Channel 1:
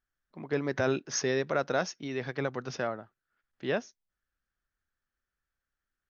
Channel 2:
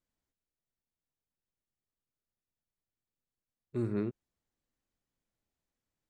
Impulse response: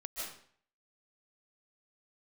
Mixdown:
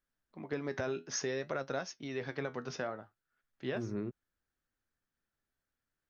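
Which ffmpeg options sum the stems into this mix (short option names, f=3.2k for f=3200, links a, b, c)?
-filter_complex "[0:a]flanger=delay=7.2:depth=5.3:regen=65:speed=0.57:shape=sinusoidal,volume=1dB[a];[1:a]highpass=63,highshelf=f=4.8k:g=-9,volume=-2.5dB[b];[a][b]amix=inputs=2:normalize=0,acompressor=threshold=-32dB:ratio=6"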